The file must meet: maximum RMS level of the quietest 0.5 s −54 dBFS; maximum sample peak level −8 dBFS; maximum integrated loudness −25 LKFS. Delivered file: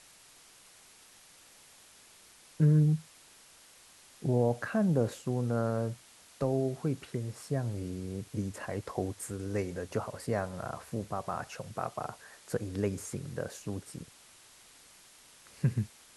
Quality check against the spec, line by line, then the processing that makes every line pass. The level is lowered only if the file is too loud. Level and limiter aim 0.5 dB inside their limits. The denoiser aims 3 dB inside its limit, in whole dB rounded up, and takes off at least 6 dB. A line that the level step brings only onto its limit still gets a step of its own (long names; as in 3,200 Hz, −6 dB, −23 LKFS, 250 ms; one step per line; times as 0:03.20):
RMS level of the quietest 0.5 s −58 dBFS: in spec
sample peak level −15.5 dBFS: in spec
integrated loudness −33.5 LKFS: in spec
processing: no processing needed